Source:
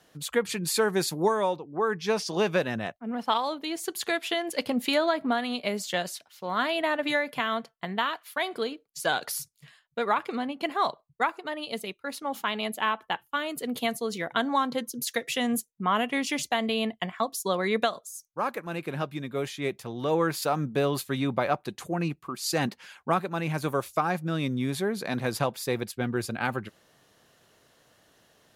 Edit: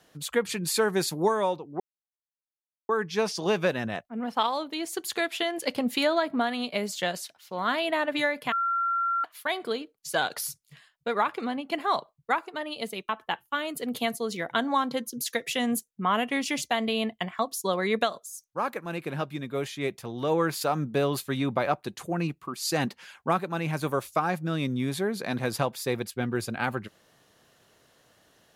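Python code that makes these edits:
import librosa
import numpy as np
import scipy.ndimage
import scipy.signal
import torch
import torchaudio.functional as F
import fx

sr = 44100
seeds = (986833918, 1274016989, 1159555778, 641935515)

y = fx.edit(x, sr, fx.insert_silence(at_s=1.8, length_s=1.09),
    fx.bleep(start_s=7.43, length_s=0.72, hz=1370.0, db=-23.5),
    fx.cut(start_s=12.0, length_s=0.9), tone=tone)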